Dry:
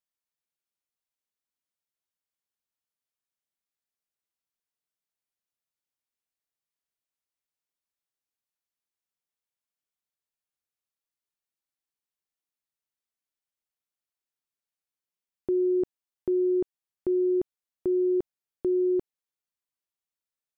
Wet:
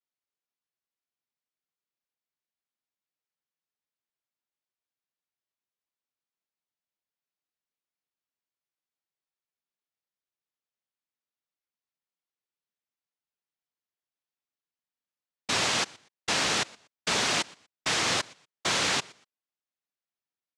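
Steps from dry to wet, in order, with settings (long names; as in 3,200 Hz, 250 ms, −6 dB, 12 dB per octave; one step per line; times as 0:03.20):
repeating echo 120 ms, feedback 22%, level −22.5 dB
cochlear-implant simulation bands 1
high-frequency loss of the air 73 metres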